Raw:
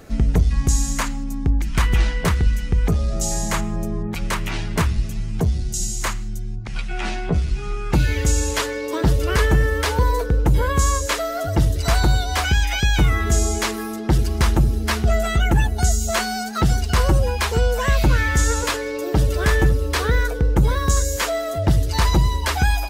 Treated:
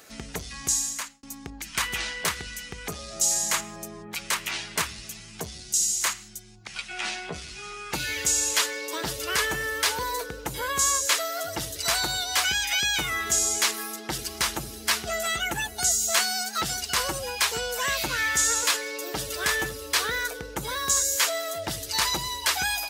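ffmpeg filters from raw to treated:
-filter_complex "[0:a]asplit=2[a][b];[a]atrim=end=1.23,asetpts=PTS-STARTPTS,afade=t=out:st=0.67:d=0.56[c];[b]atrim=start=1.23,asetpts=PTS-STARTPTS,afade=t=in:d=0.004:c=hsin[d];[c][d]concat=n=2:v=0:a=1,highpass=f=720:p=1,highshelf=f=2.1k:g=10,volume=-5.5dB"

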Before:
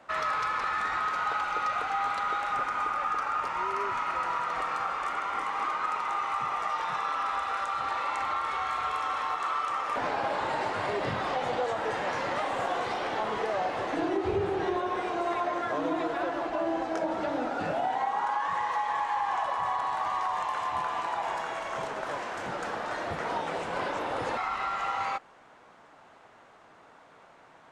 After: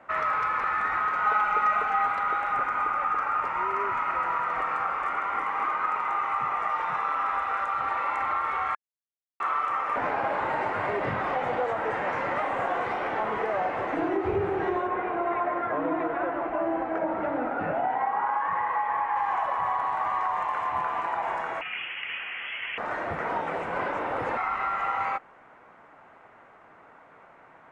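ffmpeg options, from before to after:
-filter_complex "[0:a]asettb=1/sr,asplit=3[a][b][c];[a]atrim=end=1.234[d];[b]atrim=start=1.23:end=2.06,asetpts=PTS-STARTPTS,afade=t=in:d=0.004:c=qsin,afade=t=out:st=0.826:d=0.004:c=qsin,aecho=1:1:4.7:0.65,atrim=end_sample=36603[e];[c]atrim=start=2.056[f];[d][e]acrossfade=d=0.004:c1=hsin:c2=qsin[g];[g][f]acrossfade=d=0.004:c1=qsin:c2=hsin,asettb=1/sr,asplit=3[h][i][j];[h]atrim=end=14.874[k];[i]atrim=start=14.87:end=19.16,asetpts=PTS-STARTPTS,afade=t=in:d=0.004:c=qsin,afade=t=out:st=4.286:d=0.004:c=qsin,lowpass=2.6k[l];[j]atrim=start=19.156[m];[k][l]acrossfade=d=0.004:c1=hsin:c2=qsin[n];[n][m]acrossfade=d=0.004:c1=qsin:c2=hsin,asettb=1/sr,asplit=3[o][p][q];[o]atrim=end=21.614[r];[p]atrim=start=21.61:end=22.78,asetpts=PTS-STARTPTS,afade=t=in:d=0.004:c=qsin,afade=t=out:st=1.166:d=0.004:c=qsin,lowpass=f=3k:t=q:w=0.5098,lowpass=f=3k:t=q:w=0.6013,lowpass=f=3k:t=q:w=0.9,lowpass=f=3k:t=q:w=2.563,afreqshift=-3500[s];[q]atrim=start=22.776[t];[r][s]acrossfade=d=0.004:c1=hsin:c2=qsin[u];[u][t]acrossfade=d=0.004:c1=qsin:c2=hsin,asplit=3[v][w][x];[v]atrim=end=8.75,asetpts=PTS-STARTPTS,afade=t=out:st=8.746:d=0.004:c=hsin[y];[w]atrim=start=8.75:end=9.4,asetpts=PTS-STARTPTS,volume=0[z];[x]atrim=start=9.4,asetpts=PTS-STARTPTS,afade=t=in:d=0.004:c=hsin[aa];[y][z][aa]concat=n=3:v=0:a=1,highshelf=f=2.9k:t=q:w=1.5:g=-11,bandreject=f=1.7k:w=24,volume=1.5dB"

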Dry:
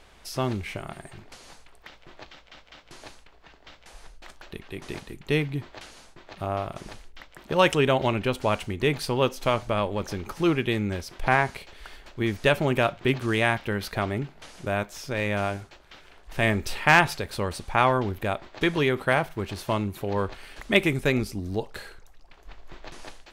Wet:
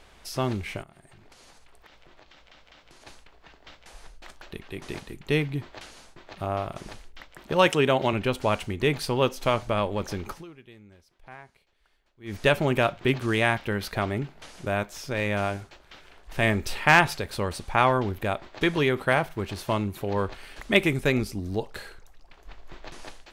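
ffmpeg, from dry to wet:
-filter_complex "[0:a]asplit=3[a][b][c];[a]afade=t=out:st=0.82:d=0.02[d];[b]acompressor=threshold=-48dB:ratio=12:attack=3.2:release=140:knee=1:detection=peak,afade=t=in:st=0.82:d=0.02,afade=t=out:st=3.06:d=0.02[e];[c]afade=t=in:st=3.06:d=0.02[f];[d][e][f]amix=inputs=3:normalize=0,asettb=1/sr,asplit=3[g][h][i];[g]atrim=end=7.674[j];[h]atrim=start=7.67:end=8.13,asetpts=PTS-STARTPTS,afade=t=in:d=0.004:c=qsin,afade=t=out:st=0.456:d=0.004:c=qsin,highpass=120[k];[i]atrim=start=8.126[l];[j][k]acrossfade=d=0.004:c1=hsin:c2=qsin[m];[m][l]acrossfade=d=0.004:c1=qsin:c2=hsin,asplit=3[n][o][p];[n]atrim=end=10.47,asetpts=PTS-STARTPTS,afade=t=out:st=10.33:d=0.14:c=qua:silence=0.0630957[q];[o]atrim=start=10.47:end=12.21,asetpts=PTS-STARTPTS,volume=-24dB[r];[p]atrim=start=12.21,asetpts=PTS-STARTPTS,afade=t=in:d=0.14:c=qua:silence=0.0630957[s];[q][r][s]concat=n=3:v=0:a=1"

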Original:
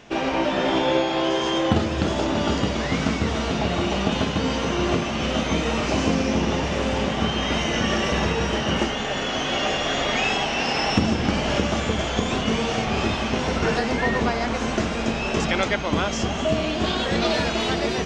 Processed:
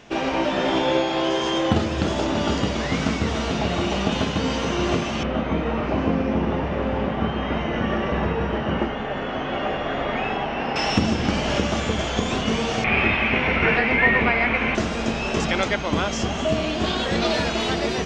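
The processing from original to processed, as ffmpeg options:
-filter_complex "[0:a]asettb=1/sr,asplit=3[a][b][c];[a]atrim=end=5.234[d];[b]atrim=start=5.23:end=10.76,asetpts=PTS-STARTPTS,afade=t=in:d=0.004:c=qsin,afade=t=out:st=5.526:d=0.004:c=qsin,lowpass=1.8k[e];[c]atrim=start=10.756[f];[d][e]acrossfade=d=0.004:c1=hsin:c2=qsin[g];[g][f]acrossfade=d=0.004:c1=qsin:c2=hsin,asettb=1/sr,asplit=3[h][i][j];[h]atrim=end=12.844[k];[i]atrim=start=12.84:end=14.75,asetpts=PTS-STARTPTS,afade=t=in:d=0.004:c=qsin,afade=t=out:st=1.906:d=0.004:c=qsin,lowpass=f=2.3k:t=q:w=5.5[l];[j]atrim=start=14.746[m];[k][l]acrossfade=d=0.004:c1=hsin:c2=qsin[n];[n][m]acrossfade=d=0.004:c1=qsin:c2=hsin"

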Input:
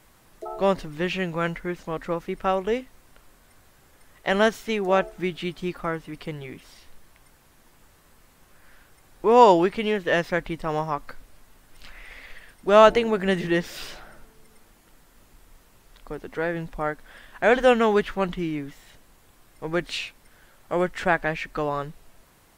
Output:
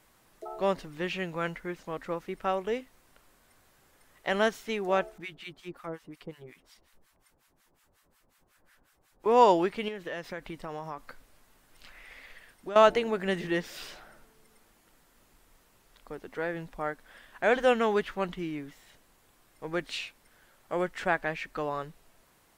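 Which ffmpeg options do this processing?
-filter_complex "[0:a]asettb=1/sr,asplit=3[a][b][c];[a]atrim=end=5.184[d];[b]atrim=start=5.18:end=9.26,asetpts=PTS-STARTPTS,afade=t=in:d=0.004:c=qsin,afade=t=out:st=4.076:d=0.004:c=qsin,acrossover=split=920[e][f];[e]aeval=exprs='val(0)*(1-1/2+1/2*cos(2*PI*5.5*n/s))':c=same[g];[f]aeval=exprs='val(0)*(1-1/2-1/2*cos(2*PI*5.5*n/s))':c=same[h];[g][h]amix=inputs=2:normalize=0[i];[c]atrim=start=9.256[j];[d][i]acrossfade=d=0.004:c1=hsin:c2=qsin[k];[k][j]acrossfade=d=0.004:c1=qsin:c2=hsin,asettb=1/sr,asplit=3[l][m][n];[l]atrim=end=9.884[o];[m]atrim=start=9.88:end=12.76,asetpts=PTS-STARTPTS,afade=t=in:d=0.004:c=qsin,afade=t=out:st=2.876:d=0.004:c=qsin,acompressor=threshold=-27dB:ratio=6:attack=3.2:release=140:knee=1:detection=peak[p];[n]atrim=start=12.756[q];[o][p]acrossfade=d=0.004:c1=hsin:c2=qsin[r];[r][q]acrossfade=d=0.004:c1=qsin:c2=hsin,lowshelf=f=150:g=-6.5,volume=-5.5dB"

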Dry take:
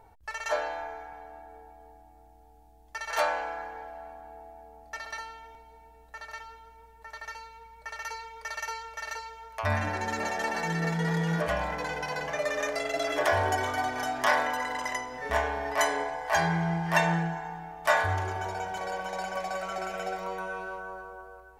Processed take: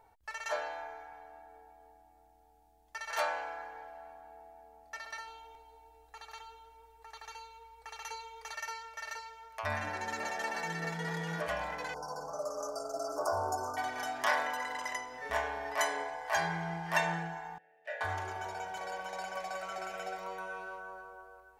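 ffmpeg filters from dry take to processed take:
-filter_complex "[0:a]asettb=1/sr,asplit=3[a][b][c];[a]atrim=end=5.274[d];[b]atrim=start=5.27:end=8.53,asetpts=PTS-STARTPTS,afade=t=in:d=0.004:c=qsin,afade=t=out:st=3.256:d=0.004:c=qsin,aecho=1:1:2.5:0.81,atrim=end_sample=143766[e];[c]atrim=start=8.526[f];[d][e]acrossfade=d=0.004:c1=hsin:c2=qsin[g];[g][f]acrossfade=d=0.004:c1=qsin:c2=hsin,asettb=1/sr,asplit=3[h][i][j];[h]atrim=end=11.944[k];[i]atrim=start=11.94:end=13.77,asetpts=PTS-STARTPTS,afade=t=in:d=0.004:c=qsin,afade=t=out:st=1.826:d=0.004:c=qsin,asuperstop=centerf=2600:order=20:qfactor=0.8[l];[j]atrim=start=13.766[m];[k][l]acrossfade=d=0.004:c1=hsin:c2=qsin[n];[n][m]acrossfade=d=0.004:c1=qsin:c2=hsin,asettb=1/sr,asplit=3[o][p][q];[o]atrim=end=17.584[r];[p]atrim=start=17.58:end=18.01,asetpts=PTS-STARTPTS,afade=t=in:d=0.004:c=qsin,afade=t=out:st=0.426:d=0.004:c=qsin,asplit=3[s][t][u];[s]bandpass=f=530:t=q:w=8,volume=0dB[v];[t]bandpass=f=1.84k:t=q:w=8,volume=-6dB[w];[u]bandpass=f=2.48k:t=q:w=8,volume=-9dB[x];[v][w][x]amix=inputs=3:normalize=0[y];[q]atrim=start=18.006[z];[r][y]acrossfade=d=0.004:c1=hsin:c2=qsin[aa];[aa][z]acrossfade=d=0.004:c1=qsin:c2=hsin,lowshelf=f=360:g=-8.5,volume=-4.5dB"

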